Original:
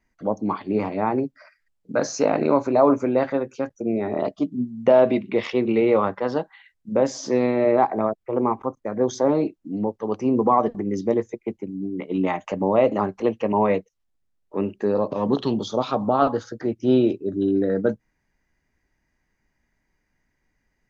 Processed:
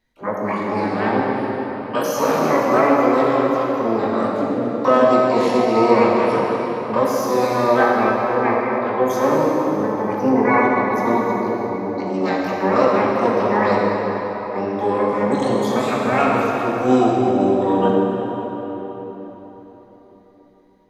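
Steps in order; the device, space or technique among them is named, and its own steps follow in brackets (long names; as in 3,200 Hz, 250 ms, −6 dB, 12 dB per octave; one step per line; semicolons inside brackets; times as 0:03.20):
shimmer-style reverb (pitch-shifted copies added +12 semitones −4 dB; convolution reverb RT60 4.4 s, pre-delay 3 ms, DRR −3.5 dB)
level −2.5 dB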